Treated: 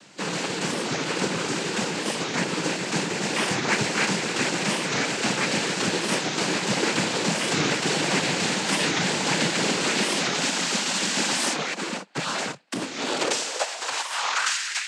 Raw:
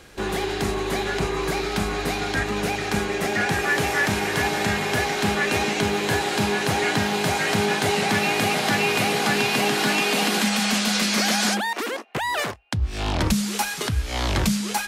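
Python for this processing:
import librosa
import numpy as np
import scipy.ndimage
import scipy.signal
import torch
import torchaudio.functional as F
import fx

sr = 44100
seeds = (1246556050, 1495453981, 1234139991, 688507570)

y = fx.spec_flatten(x, sr, power=0.55)
y = y + 0.96 * np.pad(y, (int(7.0 * sr / 1000.0), 0))[:len(y)]
y = fx.noise_vocoder(y, sr, seeds[0], bands=8)
y = fx.filter_sweep_highpass(y, sr, from_hz=190.0, to_hz=1900.0, start_s=12.58, end_s=14.79, q=2.5)
y = fx.record_warp(y, sr, rpm=45.0, depth_cents=250.0)
y = y * librosa.db_to_amplitude(-5.0)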